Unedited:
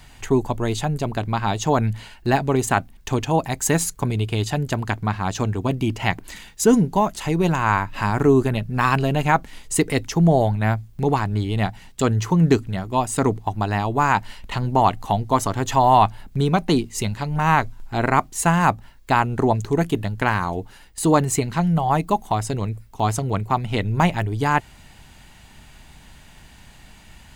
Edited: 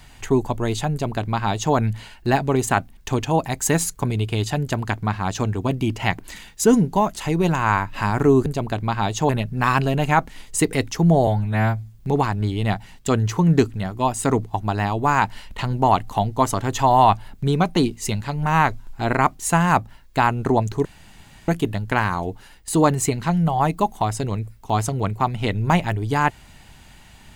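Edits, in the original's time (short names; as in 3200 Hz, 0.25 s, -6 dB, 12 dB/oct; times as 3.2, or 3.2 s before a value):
0.91–1.74 copy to 8.46
10.44–10.92 stretch 1.5×
19.78 insert room tone 0.63 s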